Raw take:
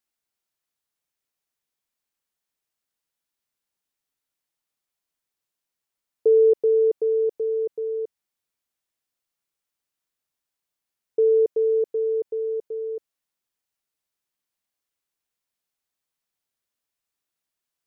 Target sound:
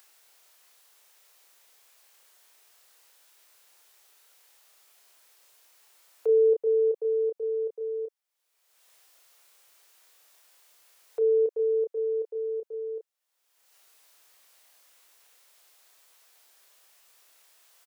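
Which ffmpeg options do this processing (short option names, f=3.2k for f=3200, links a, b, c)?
-filter_complex "[0:a]highpass=f=430:w=0.5412,highpass=f=430:w=1.3066,asplit=2[a][b];[b]adelay=29,volume=-3.5dB[c];[a][c]amix=inputs=2:normalize=0,acompressor=mode=upward:threshold=-32dB:ratio=2.5,volume=-5.5dB"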